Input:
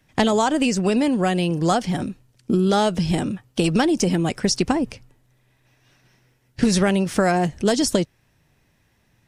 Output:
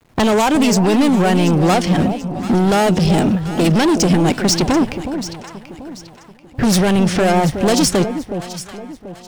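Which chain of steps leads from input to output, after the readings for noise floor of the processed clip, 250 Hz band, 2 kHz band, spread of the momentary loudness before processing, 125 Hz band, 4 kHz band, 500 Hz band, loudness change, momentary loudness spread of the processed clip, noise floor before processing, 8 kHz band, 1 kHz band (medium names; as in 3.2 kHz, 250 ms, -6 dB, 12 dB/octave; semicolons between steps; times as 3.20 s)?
-42 dBFS, +6.0 dB, +5.0 dB, 7 LU, +7.5 dB, +5.5 dB, +5.0 dB, +5.5 dB, 18 LU, -64 dBFS, +6.5 dB, +5.5 dB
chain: level-controlled noise filter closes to 980 Hz, open at -15 dBFS; waveshaping leveller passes 1; in parallel at +2 dB: peak limiter -15 dBFS, peak gain reduction 10 dB; on the sum: bit crusher 9-bit; hard clipper -12.5 dBFS, distortion -10 dB; on a send: echo whose repeats swap between lows and highs 368 ms, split 860 Hz, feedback 59%, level -8 dB; on the sum: trim +1 dB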